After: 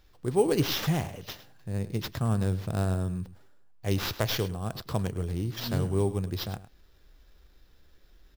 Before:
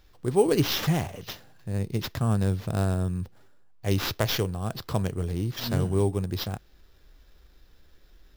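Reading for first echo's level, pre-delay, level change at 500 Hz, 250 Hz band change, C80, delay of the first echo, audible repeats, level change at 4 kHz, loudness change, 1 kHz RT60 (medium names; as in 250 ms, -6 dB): -15.5 dB, no reverb, -2.5 dB, -2.5 dB, no reverb, 105 ms, 1, -2.5 dB, -2.5 dB, no reverb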